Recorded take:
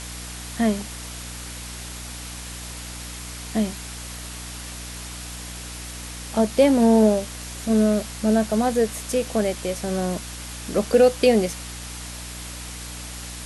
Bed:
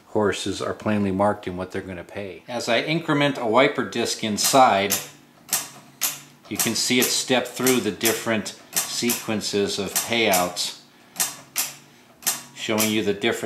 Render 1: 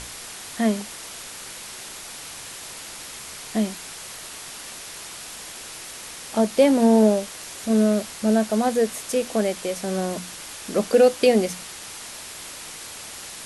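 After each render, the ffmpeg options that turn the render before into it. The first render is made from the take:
-af "bandreject=f=60:t=h:w=6,bandreject=f=120:t=h:w=6,bandreject=f=180:t=h:w=6,bandreject=f=240:t=h:w=6,bandreject=f=300:t=h:w=6"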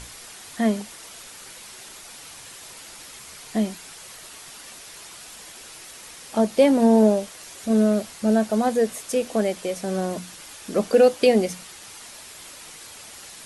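-af "afftdn=nr=6:nf=-38"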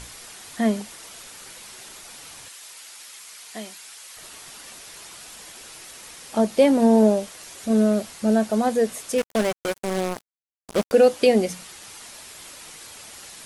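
-filter_complex "[0:a]asettb=1/sr,asplit=3[a][b][c];[a]atrim=end=2.484[d];[b]atrim=start=2.48:end=4.17,asetpts=PTS-STARTPTS,afade=t=in:d=0.004:c=qsin,afade=t=out:st=1.686:d=0.004:c=qsin,highpass=f=1.4k:p=1[e];[c]atrim=start=4.166[f];[d][e]acrossfade=d=0.004:c1=hsin:c2=qsin[g];[g][f]acrossfade=d=0.004:c1=qsin:c2=hsin,asettb=1/sr,asplit=3[h][i][j];[h]atrim=end=9.184[k];[i]atrim=start=9.18:end=10.92,asetpts=PTS-STARTPTS,afade=t=in:d=0.004:c=qsin,afade=t=out:st=1.736:d=0.004:c=qsin,acrusher=bits=3:mix=0:aa=0.5[l];[j]atrim=start=10.916[m];[k][l]acrossfade=d=0.004:c1=hsin:c2=qsin[n];[n][m]acrossfade=d=0.004:c1=qsin:c2=hsin"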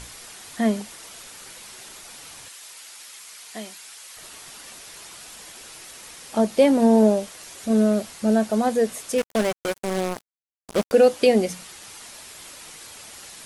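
-af anull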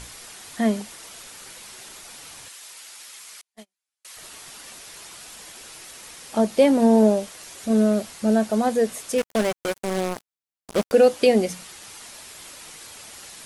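-filter_complex "[0:a]asettb=1/sr,asplit=3[a][b][c];[a]atrim=end=3.414[d];[b]atrim=start=3.41:end=4.05,asetpts=PTS-STARTPTS,afade=t=in:d=0.004:c=qsin,afade=t=out:st=0.636:d=0.004:c=qsin,agate=range=-46dB:threshold=-32dB:ratio=16:release=100:detection=peak[e];[c]atrim=start=4.046[f];[d][e]acrossfade=d=0.004:c1=hsin:c2=qsin[g];[g][f]acrossfade=d=0.004:c1=qsin:c2=hsin"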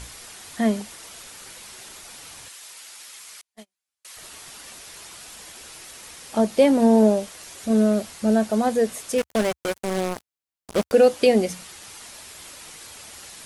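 -af "equalizer=f=70:t=o:w=0.75:g=5"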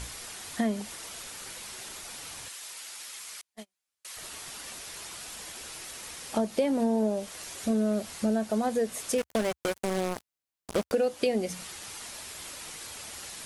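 -af "acompressor=threshold=-25dB:ratio=4"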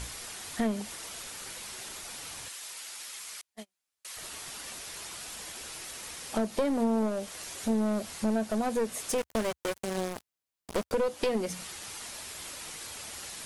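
-af "aeval=exprs='clip(val(0),-1,0.0398)':c=same"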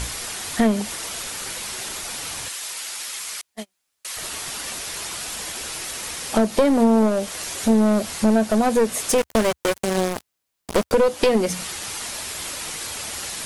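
-af "volume=11dB"

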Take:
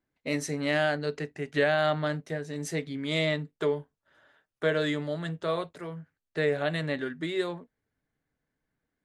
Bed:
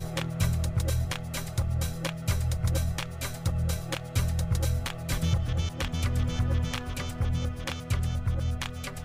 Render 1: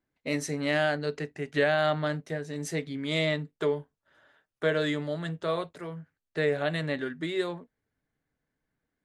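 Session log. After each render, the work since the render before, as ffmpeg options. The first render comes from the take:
-af anull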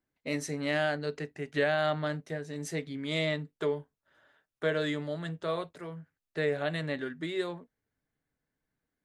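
-af "volume=-3dB"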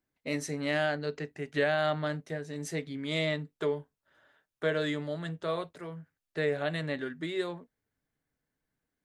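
-filter_complex "[0:a]asettb=1/sr,asplit=3[a][b][c];[a]atrim=end=0.864[d];[b]atrim=start=0.86:end=1.27,asetpts=PTS-STARTPTS,afade=t=in:d=0.004:c=qsin,afade=t=out:st=0.406:d=0.004:c=qsin,equalizer=f=9.4k:t=o:w=0.3:g=-13.5[e];[c]atrim=start=1.266[f];[d][e]acrossfade=d=0.004:c1=hsin:c2=qsin[g];[g][f]acrossfade=d=0.004:c1=qsin:c2=hsin"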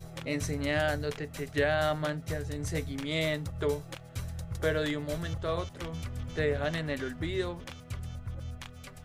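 -filter_complex "[1:a]volume=-10.5dB[a];[0:a][a]amix=inputs=2:normalize=0"

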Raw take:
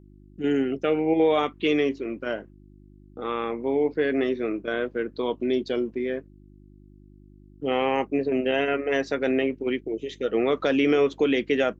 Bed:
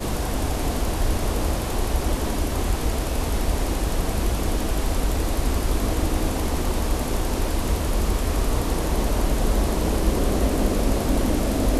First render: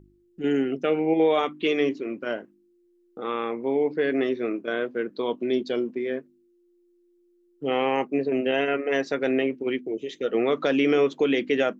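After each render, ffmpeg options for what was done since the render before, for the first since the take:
-af "bandreject=f=50:t=h:w=4,bandreject=f=100:t=h:w=4,bandreject=f=150:t=h:w=4,bandreject=f=200:t=h:w=4,bandreject=f=250:t=h:w=4,bandreject=f=300:t=h:w=4"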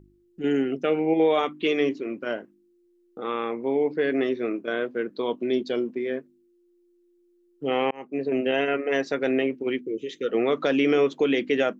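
-filter_complex "[0:a]asettb=1/sr,asplit=3[a][b][c];[a]atrim=end=9.814[d];[b]atrim=start=9.81:end=10.29,asetpts=PTS-STARTPTS,afade=t=in:d=0.004:c=qsin,afade=t=out:st=0.476:d=0.004:c=qsin,asuperstop=centerf=780:order=8:qfactor=1.4[e];[c]atrim=start=10.286[f];[d][e]acrossfade=d=0.004:c1=hsin:c2=qsin[g];[g][f]acrossfade=d=0.004:c1=qsin:c2=hsin,asplit=2[h][i];[h]atrim=end=7.91,asetpts=PTS-STARTPTS,afade=t=out:st=7.906:d=0.004:c=hsin[j];[i]atrim=start=7.91,asetpts=PTS-STARTPTS,afade=t=in:d=0.41[k];[j][k]concat=n=2:v=0:a=1"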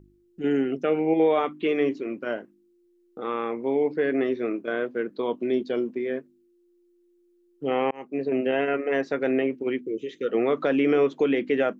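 -filter_complex "[0:a]acrossover=split=2600[a][b];[b]acompressor=threshold=-50dB:ratio=4:attack=1:release=60[c];[a][c]amix=inputs=2:normalize=0"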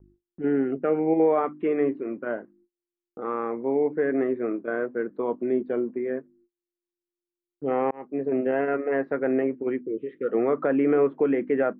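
-af "lowpass=f=1.8k:w=0.5412,lowpass=f=1.8k:w=1.3066,agate=range=-30dB:threshold=-59dB:ratio=16:detection=peak"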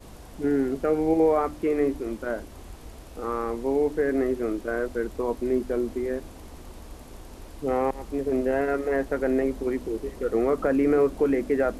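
-filter_complex "[1:a]volume=-19.5dB[a];[0:a][a]amix=inputs=2:normalize=0"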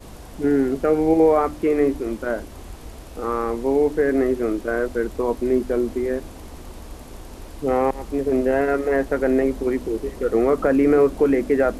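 -af "volume=5dB"

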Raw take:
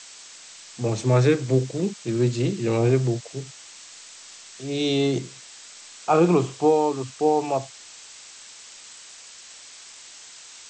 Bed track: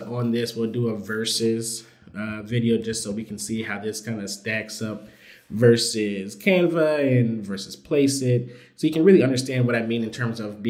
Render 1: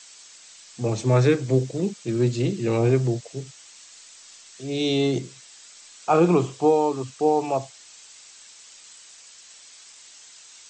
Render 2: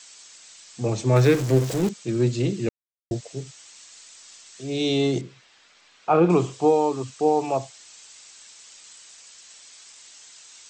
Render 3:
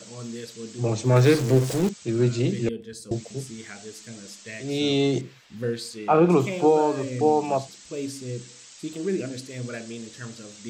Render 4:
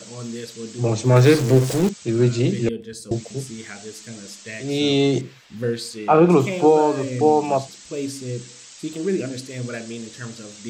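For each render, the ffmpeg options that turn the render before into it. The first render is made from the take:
-af "afftdn=nr=6:nf=-45"
-filter_complex "[0:a]asettb=1/sr,asplit=3[a][b][c];[a]atrim=end=1.164[d];[b]atrim=start=1.16:end=1.89,asetpts=PTS-STARTPTS,afade=t=in:d=0.004:c=qsin,afade=t=out:st=0.726:d=0.004:c=qsin,aeval=exprs='val(0)+0.5*0.0473*sgn(val(0))':c=same[e];[c]atrim=start=1.886[f];[d][e]acrossfade=d=0.004:c1=hsin:c2=qsin[g];[g][f]acrossfade=d=0.004:c1=qsin:c2=hsin,asettb=1/sr,asplit=3[h][i][j];[h]atrim=end=5.214[k];[i]atrim=start=5.21:end=6.3,asetpts=PTS-STARTPTS,afade=t=in:d=0.004:c=qsin,afade=t=out:st=1.086:d=0.004:c=qsin,lowpass=2.9k[l];[j]atrim=start=6.296[m];[k][l]acrossfade=d=0.004:c1=hsin:c2=qsin[n];[n][m]acrossfade=d=0.004:c1=qsin:c2=hsin,asplit=3[o][p][q];[o]atrim=end=2.69,asetpts=PTS-STARTPTS,afade=t=out:st=2.686:d=0.004:c=hsin[r];[p]atrim=start=2.69:end=3.11,asetpts=PTS-STARTPTS,volume=0[s];[q]atrim=start=3.11,asetpts=PTS-STARTPTS,afade=t=in:d=0.004:c=hsin[t];[r][s][t]concat=n=3:v=0:a=1"
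-filter_complex "[1:a]volume=-12.5dB[a];[0:a][a]amix=inputs=2:normalize=0"
-af "volume=4dB"

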